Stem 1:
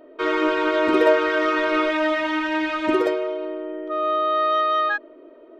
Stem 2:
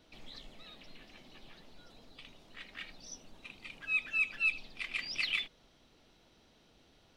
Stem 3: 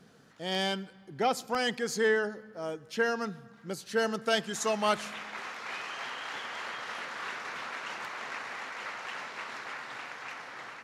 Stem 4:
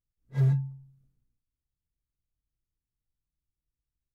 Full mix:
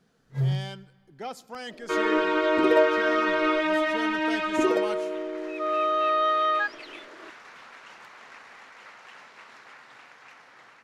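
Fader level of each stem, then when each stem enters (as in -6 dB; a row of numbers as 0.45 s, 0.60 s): -3.0 dB, -12.5 dB, -8.5 dB, -1.5 dB; 1.70 s, 1.60 s, 0.00 s, 0.00 s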